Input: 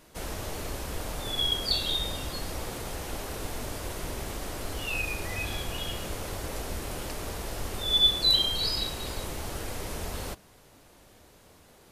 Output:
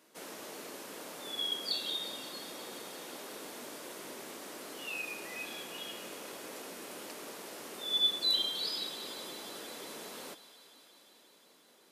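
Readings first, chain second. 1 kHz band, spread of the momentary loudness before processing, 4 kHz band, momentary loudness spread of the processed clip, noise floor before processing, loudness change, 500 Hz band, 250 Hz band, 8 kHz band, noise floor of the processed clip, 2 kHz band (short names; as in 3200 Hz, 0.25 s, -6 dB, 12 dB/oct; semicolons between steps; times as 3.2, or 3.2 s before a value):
-8.0 dB, 15 LU, -6.5 dB, 16 LU, -56 dBFS, -7.0 dB, -7.5 dB, -8.5 dB, -6.5 dB, -63 dBFS, -7.0 dB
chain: HPF 220 Hz 24 dB/oct; bell 740 Hz -3 dB 0.44 oct; thinning echo 0.178 s, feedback 83%, high-pass 350 Hz, level -17 dB; gain -7 dB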